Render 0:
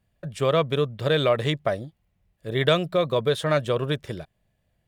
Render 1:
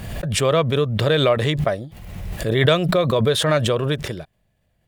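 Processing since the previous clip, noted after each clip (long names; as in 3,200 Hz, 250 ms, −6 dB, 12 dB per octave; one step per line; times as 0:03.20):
background raised ahead of every attack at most 36 dB per second
level +3 dB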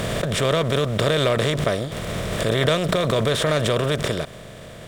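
compressor on every frequency bin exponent 0.4
level −7 dB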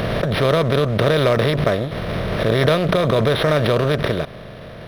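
linearly interpolated sample-rate reduction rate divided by 6×
level +4 dB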